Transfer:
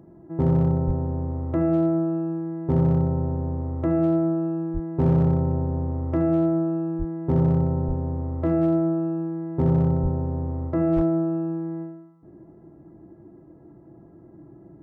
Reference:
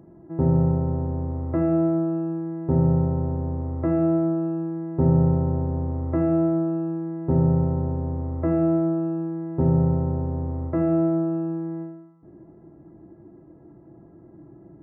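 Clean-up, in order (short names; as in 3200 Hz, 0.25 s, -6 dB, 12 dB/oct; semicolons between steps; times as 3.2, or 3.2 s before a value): clip repair -14 dBFS; de-plosive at 0.86/4.73/6.98/7.87/10.02/10.95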